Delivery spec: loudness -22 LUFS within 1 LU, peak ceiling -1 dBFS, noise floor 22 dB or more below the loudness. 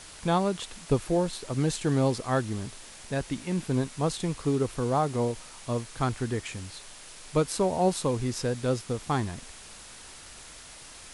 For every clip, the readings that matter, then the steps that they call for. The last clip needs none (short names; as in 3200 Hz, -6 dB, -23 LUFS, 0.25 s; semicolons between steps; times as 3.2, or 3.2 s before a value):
noise floor -47 dBFS; noise floor target -51 dBFS; loudness -29.0 LUFS; peak -12.0 dBFS; loudness target -22.0 LUFS
-> denoiser 6 dB, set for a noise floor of -47 dBFS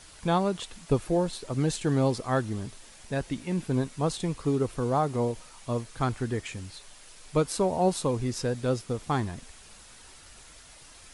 noise floor -51 dBFS; loudness -29.0 LUFS; peak -12.0 dBFS; loudness target -22.0 LUFS
-> gain +7 dB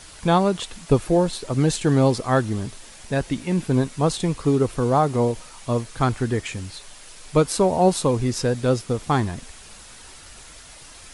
loudness -22.0 LUFS; peak -5.0 dBFS; noise floor -44 dBFS